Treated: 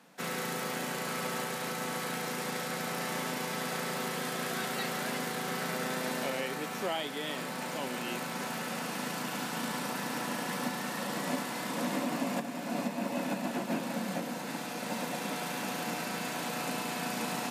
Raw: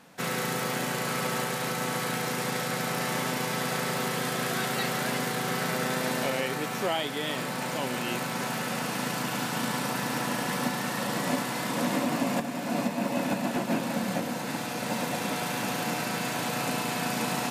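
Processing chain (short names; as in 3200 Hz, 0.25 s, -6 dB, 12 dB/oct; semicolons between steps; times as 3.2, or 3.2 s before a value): steep high-pass 150 Hz; gain -5 dB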